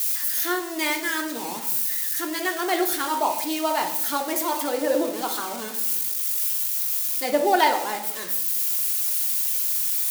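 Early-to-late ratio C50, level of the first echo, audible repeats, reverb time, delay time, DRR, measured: 8.5 dB, no echo audible, no echo audible, 0.80 s, no echo audible, 3.0 dB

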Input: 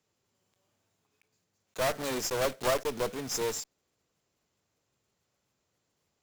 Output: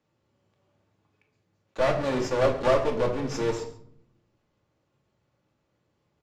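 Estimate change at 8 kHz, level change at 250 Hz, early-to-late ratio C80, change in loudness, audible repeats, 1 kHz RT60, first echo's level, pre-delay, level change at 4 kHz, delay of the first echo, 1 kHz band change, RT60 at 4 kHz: −8.5 dB, +8.5 dB, 11.5 dB, +5.5 dB, 1, 0.60 s, −17.0 dB, 3 ms, −2.0 dB, 138 ms, +5.0 dB, 0.40 s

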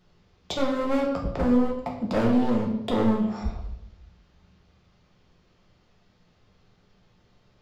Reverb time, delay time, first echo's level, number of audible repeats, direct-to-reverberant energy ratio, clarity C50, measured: 0.85 s, no echo audible, no echo audible, no echo audible, −1.5 dB, 5.5 dB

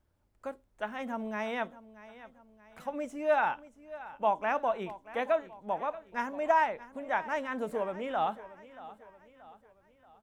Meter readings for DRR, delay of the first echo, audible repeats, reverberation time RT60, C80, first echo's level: no reverb audible, 630 ms, 3, no reverb audible, no reverb audible, −17.0 dB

